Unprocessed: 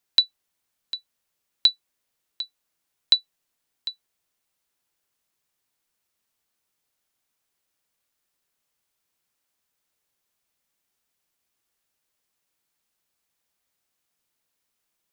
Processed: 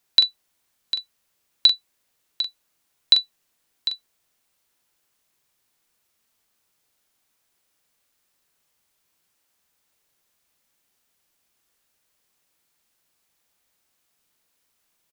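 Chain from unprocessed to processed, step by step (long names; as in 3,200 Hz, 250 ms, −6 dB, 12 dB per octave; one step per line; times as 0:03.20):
brickwall limiter −9 dBFS, peak gain reduction 4 dB
double-tracking delay 42 ms −7.5 dB
level +6 dB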